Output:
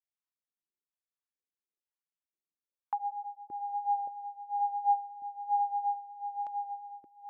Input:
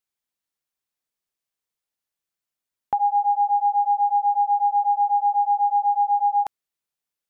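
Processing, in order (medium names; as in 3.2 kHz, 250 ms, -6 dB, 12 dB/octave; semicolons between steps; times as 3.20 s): filtered feedback delay 573 ms, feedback 63%, low-pass 860 Hz, level -4 dB; wah-wah 1.1 Hz 330–1000 Hz, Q 2.7; phase shifter stages 2, 3 Hz, lowest notch 490–1000 Hz; trim +2.5 dB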